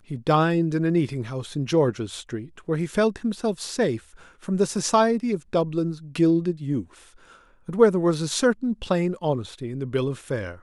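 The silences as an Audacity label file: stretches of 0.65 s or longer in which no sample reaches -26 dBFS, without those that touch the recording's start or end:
6.810000	7.690000	silence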